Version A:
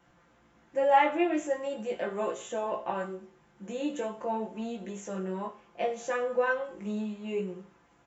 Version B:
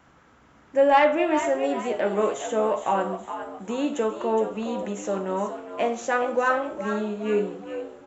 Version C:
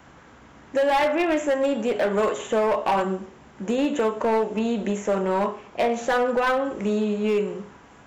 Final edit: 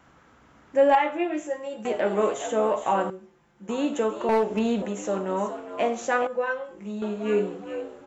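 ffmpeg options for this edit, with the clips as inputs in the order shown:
-filter_complex "[0:a]asplit=3[a][b][c];[1:a]asplit=5[d][e][f][g][h];[d]atrim=end=0.952[i];[a]atrim=start=0.948:end=1.852[j];[e]atrim=start=1.848:end=3.102[k];[b]atrim=start=3.098:end=3.692[l];[f]atrim=start=3.688:end=4.292[m];[2:a]atrim=start=4.288:end=4.822[n];[g]atrim=start=4.818:end=6.272[o];[c]atrim=start=6.268:end=7.022[p];[h]atrim=start=7.018[q];[i][j]acrossfade=d=0.004:c1=hsin:c2=hsin[r];[r][k]acrossfade=d=0.004:c1=hsin:c2=hsin[s];[s][l]acrossfade=d=0.004:c1=hsin:c2=hsin[t];[t][m]acrossfade=d=0.004:c1=hsin:c2=hsin[u];[u][n]acrossfade=d=0.004:c1=hsin:c2=hsin[v];[v][o]acrossfade=d=0.004:c1=hsin:c2=hsin[w];[w][p]acrossfade=d=0.004:c1=hsin:c2=hsin[x];[x][q]acrossfade=d=0.004:c1=hsin:c2=hsin"

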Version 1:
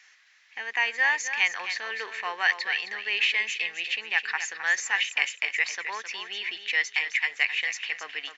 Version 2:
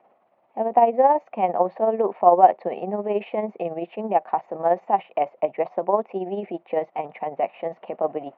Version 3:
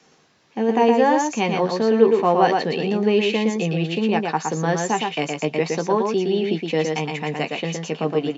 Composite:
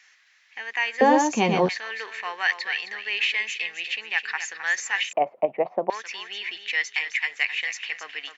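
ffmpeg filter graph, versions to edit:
-filter_complex "[0:a]asplit=3[a][b][c];[a]atrim=end=1.012[d];[2:a]atrim=start=1.008:end=1.692[e];[b]atrim=start=1.688:end=5.132[f];[1:a]atrim=start=5.128:end=5.902[g];[c]atrim=start=5.898[h];[d][e]acrossfade=d=0.004:c1=hsin:c2=hsin[i];[i][f]acrossfade=d=0.004:c1=hsin:c2=hsin[j];[j][g]acrossfade=d=0.004:c1=hsin:c2=hsin[k];[k][h]acrossfade=d=0.004:c1=hsin:c2=hsin"

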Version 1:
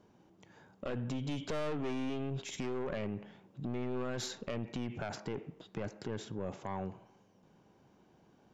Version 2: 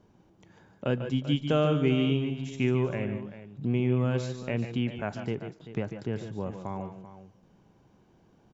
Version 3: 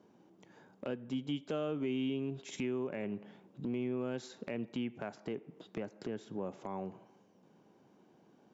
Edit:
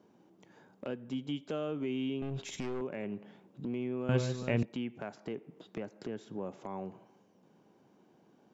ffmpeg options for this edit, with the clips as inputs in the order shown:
-filter_complex "[2:a]asplit=3[a][b][c];[a]atrim=end=2.222[d];[0:a]atrim=start=2.218:end=2.812[e];[b]atrim=start=2.808:end=4.092[f];[1:a]atrim=start=4.088:end=4.632[g];[c]atrim=start=4.628[h];[d][e]acrossfade=d=0.004:c1=hsin:c2=hsin[i];[i][f]acrossfade=d=0.004:c1=hsin:c2=hsin[j];[j][g]acrossfade=d=0.004:c1=hsin:c2=hsin[k];[k][h]acrossfade=d=0.004:c1=hsin:c2=hsin"

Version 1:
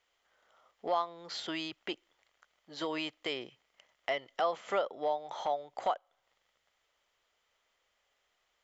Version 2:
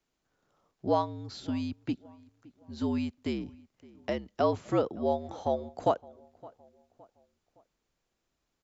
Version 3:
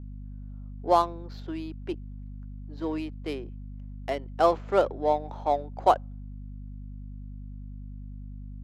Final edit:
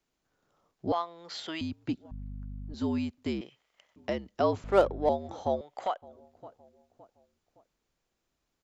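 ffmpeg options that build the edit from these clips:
-filter_complex "[0:a]asplit=3[a][b][c];[2:a]asplit=2[d][e];[1:a]asplit=6[f][g][h][i][j][k];[f]atrim=end=0.922[l];[a]atrim=start=0.918:end=1.612[m];[g]atrim=start=1.608:end=2.112[n];[d]atrim=start=2.108:end=2.742[o];[h]atrim=start=2.738:end=3.412[p];[b]atrim=start=3.408:end=3.962[q];[i]atrim=start=3.958:end=4.642[r];[e]atrim=start=4.638:end=5.092[s];[j]atrim=start=5.088:end=5.612[t];[c]atrim=start=5.608:end=6.022[u];[k]atrim=start=6.018[v];[l][m]acrossfade=d=0.004:c1=hsin:c2=hsin[w];[w][n]acrossfade=d=0.004:c1=hsin:c2=hsin[x];[x][o]acrossfade=d=0.004:c1=hsin:c2=hsin[y];[y][p]acrossfade=d=0.004:c1=hsin:c2=hsin[z];[z][q]acrossfade=d=0.004:c1=hsin:c2=hsin[aa];[aa][r]acrossfade=d=0.004:c1=hsin:c2=hsin[ab];[ab][s]acrossfade=d=0.004:c1=hsin:c2=hsin[ac];[ac][t]acrossfade=d=0.004:c1=hsin:c2=hsin[ad];[ad][u]acrossfade=d=0.004:c1=hsin:c2=hsin[ae];[ae][v]acrossfade=d=0.004:c1=hsin:c2=hsin"

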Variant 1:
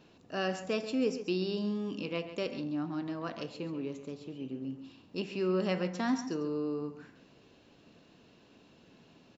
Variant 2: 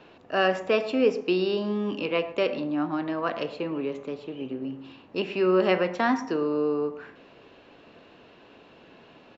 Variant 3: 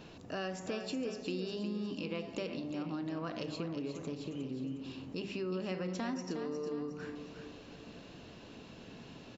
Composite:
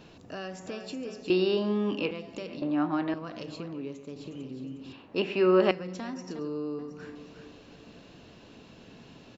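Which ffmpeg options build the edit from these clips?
-filter_complex "[1:a]asplit=3[a][b][c];[0:a]asplit=2[d][e];[2:a]asplit=6[f][g][h][i][j][k];[f]atrim=end=1.302[l];[a]atrim=start=1.298:end=2.112[m];[g]atrim=start=2.108:end=2.622[n];[b]atrim=start=2.618:end=3.142[o];[h]atrim=start=3.138:end=3.732[p];[d]atrim=start=3.728:end=4.162[q];[i]atrim=start=4.158:end=4.932[r];[c]atrim=start=4.928:end=5.712[s];[j]atrim=start=5.708:end=6.392[t];[e]atrim=start=6.388:end=6.792[u];[k]atrim=start=6.788[v];[l][m]acrossfade=d=0.004:c1=hsin:c2=hsin[w];[w][n]acrossfade=d=0.004:c1=hsin:c2=hsin[x];[x][o]acrossfade=d=0.004:c1=hsin:c2=hsin[y];[y][p]acrossfade=d=0.004:c1=hsin:c2=hsin[z];[z][q]acrossfade=d=0.004:c1=hsin:c2=hsin[aa];[aa][r]acrossfade=d=0.004:c1=hsin:c2=hsin[ab];[ab][s]acrossfade=d=0.004:c1=hsin:c2=hsin[ac];[ac][t]acrossfade=d=0.004:c1=hsin:c2=hsin[ad];[ad][u]acrossfade=d=0.004:c1=hsin:c2=hsin[ae];[ae][v]acrossfade=d=0.004:c1=hsin:c2=hsin"

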